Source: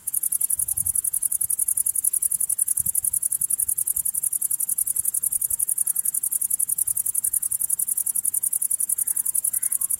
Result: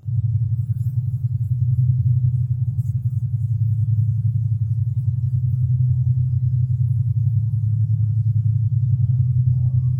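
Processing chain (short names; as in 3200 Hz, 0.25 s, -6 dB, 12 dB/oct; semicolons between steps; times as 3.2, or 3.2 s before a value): spectrum mirrored in octaves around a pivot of 1100 Hz; chorus voices 2, 0.25 Hz, delay 30 ms, depth 2.4 ms; thin delay 0.312 s, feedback 72%, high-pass 3700 Hz, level -8 dB; gain -4.5 dB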